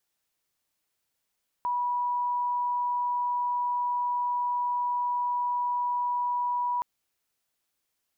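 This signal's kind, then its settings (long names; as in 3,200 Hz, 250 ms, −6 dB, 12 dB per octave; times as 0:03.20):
tone sine 976 Hz −25 dBFS 5.17 s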